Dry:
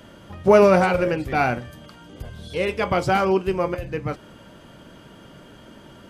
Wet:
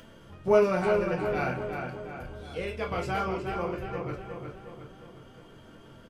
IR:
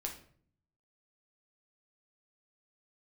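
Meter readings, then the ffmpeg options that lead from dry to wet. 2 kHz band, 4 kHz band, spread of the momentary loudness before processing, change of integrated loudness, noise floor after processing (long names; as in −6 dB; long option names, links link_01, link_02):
−8.5 dB, −9.5 dB, 19 LU, −9.0 dB, −52 dBFS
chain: -filter_complex "[0:a]asplit=2[link_01][link_02];[link_02]adelay=361,lowpass=frequency=3400:poles=1,volume=-5dB,asplit=2[link_03][link_04];[link_04]adelay=361,lowpass=frequency=3400:poles=1,volume=0.53,asplit=2[link_05][link_06];[link_06]adelay=361,lowpass=frequency=3400:poles=1,volume=0.53,asplit=2[link_07][link_08];[link_08]adelay=361,lowpass=frequency=3400:poles=1,volume=0.53,asplit=2[link_09][link_10];[link_10]adelay=361,lowpass=frequency=3400:poles=1,volume=0.53,asplit=2[link_11][link_12];[link_12]adelay=361,lowpass=frequency=3400:poles=1,volume=0.53,asplit=2[link_13][link_14];[link_14]adelay=361,lowpass=frequency=3400:poles=1,volume=0.53[link_15];[link_01][link_03][link_05][link_07][link_09][link_11][link_13][link_15]amix=inputs=8:normalize=0,acompressor=mode=upward:threshold=-36dB:ratio=2.5[link_16];[1:a]atrim=start_sample=2205,atrim=end_sample=3969,asetrate=61740,aresample=44100[link_17];[link_16][link_17]afir=irnorm=-1:irlink=0,volume=-6.5dB"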